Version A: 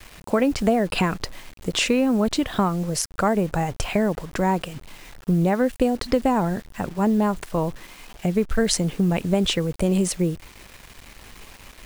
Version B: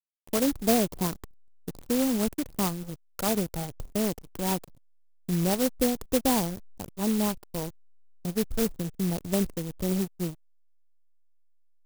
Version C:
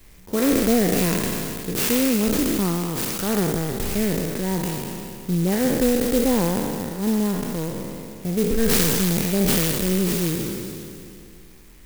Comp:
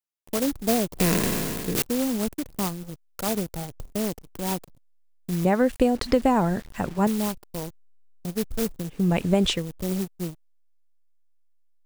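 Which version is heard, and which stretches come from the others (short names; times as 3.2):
B
1–1.82 from C
5.45–7.07 from A
9–9.58 from A, crossfade 0.24 s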